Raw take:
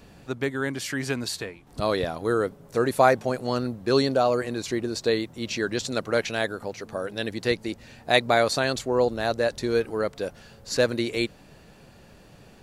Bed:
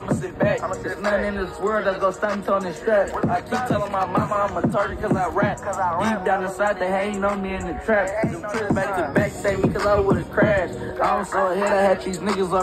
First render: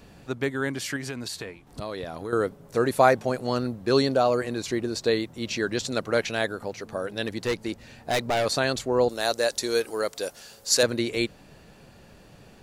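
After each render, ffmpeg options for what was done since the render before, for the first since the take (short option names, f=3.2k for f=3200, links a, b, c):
-filter_complex "[0:a]asettb=1/sr,asplit=3[a][b][c];[a]atrim=end=0.964[d];[b]atrim=start=0.96:end=2.33,asetpts=PTS-STARTPTS,afade=t=in:d=0.004:c=qsin,afade=t=out:st=1.366:d=0.004:c=qsin,acompressor=threshold=-30dB:ratio=4:attack=3.2:release=140:knee=1:detection=peak[e];[c]atrim=start=2.326[f];[d][e]acrossfade=d=0.004:c1=hsin:c2=qsin[g];[g][f]acrossfade=d=0.004:c1=qsin:c2=hsin,asettb=1/sr,asplit=3[h][i][j];[h]atrim=end=7.244[k];[i]atrim=start=7.24:end=8.46,asetpts=PTS-STARTPTS,afade=t=in:d=0.004:c=qsin,afade=t=out:st=1.216:d=0.004:c=qsin,volume=20.5dB,asoftclip=hard,volume=-20.5dB[l];[j]atrim=start=8.456[m];[k][l]acrossfade=d=0.004:c1=hsin:c2=qsin[n];[n][m]acrossfade=d=0.004:c1=qsin:c2=hsin,asettb=1/sr,asplit=3[o][p][q];[o]atrim=end=9.094[r];[p]atrim=start=9.09:end=10.83,asetpts=PTS-STARTPTS,afade=t=in:d=0.004:c=qsin,afade=t=out:st=1.736:d=0.004:c=qsin,bass=f=250:g=-12,treble=f=4k:g=13[s];[q]atrim=start=10.826[t];[r][s]acrossfade=d=0.004:c1=hsin:c2=qsin[u];[u][t]acrossfade=d=0.004:c1=qsin:c2=hsin"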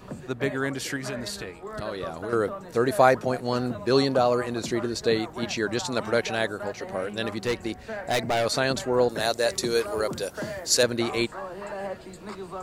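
-filter_complex "[1:a]volume=-16dB[a];[0:a][a]amix=inputs=2:normalize=0"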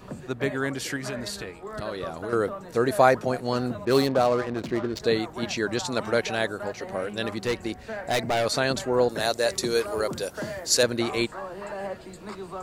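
-filter_complex "[0:a]asettb=1/sr,asplit=3[a][b][c];[a]atrim=end=3.854[d];[b]atrim=start=3.85:end=5,asetpts=PTS-STARTPTS,afade=t=in:d=0.004:c=qsin,afade=t=out:st=1.146:d=0.004:c=qsin,adynamicsmooth=sensitivity=6:basefreq=650[e];[c]atrim=start=4.996[f];[d][e]acrossfade=d=0.004:c1=hsin:c2=qsin[g];[g][f]acrossfade=d=0.004:c1=qsin:c2=hsin"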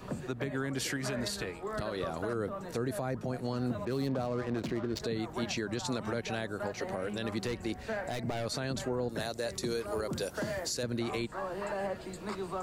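-filter_complex "[0:a]acrossover=split=260[a][b];[b]acompressor=threshold=-31dB:ratio=6[c];[a][c]amix=inputs=2:normalize=0,alimiter=limit=-24dB:level=0:latency=1:release=106"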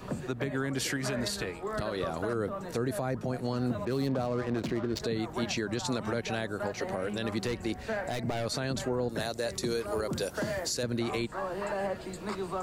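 -af "volume=2.5dB"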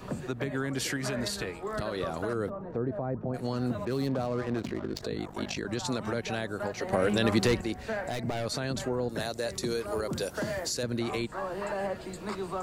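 -filter_complex "[0:a]asplit=3[a][b][c];[a]afade=t=out:st=2.49:d=0.02[d];[b]lowpass=1k,afade=t=in:st=2.49:d=0.02,afade=t=out:st=3.33:d=0.02[e];[c]afade=t=in:st=3.33:d=0.02[f];[d][e][f]amix=inputs=3:normalize=0,asettb=1/sr,asplit=3[g][h][i];[g]atrim=end=4.624[j];[h]atrim=start=4.62:end=5.65,asetpts=PTS-STARTPTS,afade=t=in:d=0.004:c=qsin,afade=t=out:st=1.026:d=0.004:c=qsin,aeval=exprs='val(0)*sin(2*PI*25*n/s)':c=same[k];[i]atrim=start=5.646[l];[j][k]acrossfade=d=0.004:c1=hsin:c2=qsin[m];[m][l]acrossfade=d=0.004:c1=qsin:c2=hsin,asplit=3[n][o][p];[n]atrim=end=6.932[q];[o]atrim=start=6.928:end=7.612,asetpts=PTS-STARTPTS,volume=7.5dB[r];[p]atrim=start=7.608[s];[q][r]acrossfade=d=0.004:c1=hsin:c2=hsin[t];[t][s]acrossfade=d=0.004:c1=hsin:c2=hsin"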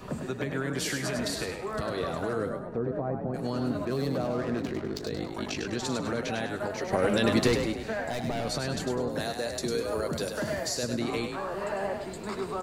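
-filter_complex "[0:a]asplit=2[a][b];[b]adelay=13,volume=-12.5dB[c];[a][c]amix=inputs=2:normalize=0,asplit=5[d][e][f][g][h];[e]adelay=101,afreqshift=38,volume=-6dB[i];[f]adelay=202,afreqshift=76,volume=-15.4dB[j];[g]adelay=303,afreqshift=114,volume=-24.7dB[k];[h]adelay=404,afreqshift=152,volume=-34.1dB[l];[d][i][j][k][l]amix=inputs=5:normalize=0"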